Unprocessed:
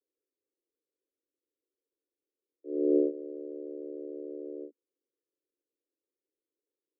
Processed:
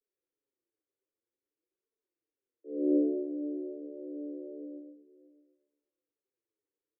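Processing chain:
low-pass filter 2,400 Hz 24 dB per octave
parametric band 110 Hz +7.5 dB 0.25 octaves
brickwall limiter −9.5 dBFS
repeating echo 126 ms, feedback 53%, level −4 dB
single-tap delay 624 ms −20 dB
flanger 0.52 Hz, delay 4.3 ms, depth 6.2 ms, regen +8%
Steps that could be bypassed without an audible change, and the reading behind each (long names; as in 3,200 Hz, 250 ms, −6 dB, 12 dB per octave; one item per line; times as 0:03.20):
low-pass filter 2,400 Hz: nothing at its input above 600 Hz
parametric band 110 Hz: nothing at its input below 210 Hz
brickwall limiter −9.5 dBFS: peak of its input −14.5 dBFS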